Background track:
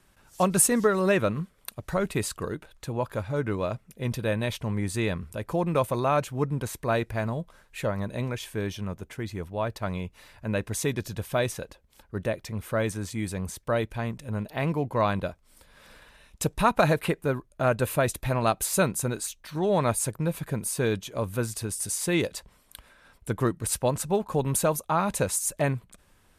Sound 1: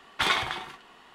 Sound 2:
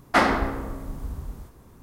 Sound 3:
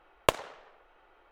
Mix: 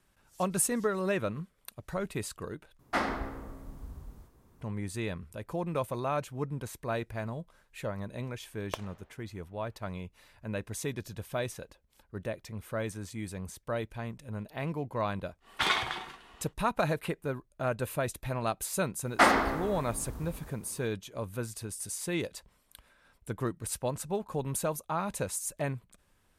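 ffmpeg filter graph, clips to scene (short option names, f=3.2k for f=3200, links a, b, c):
-filter_complex "[2:a]asplit=2[a][b];[0:a]volume=-7.5dB[c];[b]lowshelf=f=190:g=-9[d];[c]asplit=2[e][f];[e]atrim=end=2.794[g];[a]atrim=end=1.82,asetpts=PTS-STARTPTS,volume=-11dB[h];[f]atrim=start=4.606[i];[3:a]atrim=end=1.31,asetpts=PTS-STARTPTS,volume=-13dB,afade=t=in:d=0.004:c=hsin,afade=t=out:st=1.306:d=0.004:c=hsin,adelay=8450[j];[1:a]atrim=end=1.14,asetpts=PTS-STARTPTS,volume=-3dB,afade=t=in:d=0.1,afade=t=out:st=1.04:d=0.1,adelay=679140S[k];[d]atrim=end=1.82,asetpts=PTS-STARTPTS,volume=-2dB,afade=t=in:d=0.004:c=hsin,afade=t=out:st=1.816:d=0.004:c=hsin,adelay=19050[l];[g][h]acrossfade=d=0.004:c1=hsin:c2=hsin[m];[m][i]acrossfade=d=0.004:c1=hsin:c2=hsin[n];[n][j][k][l]amix=inputs=4:normalize=0"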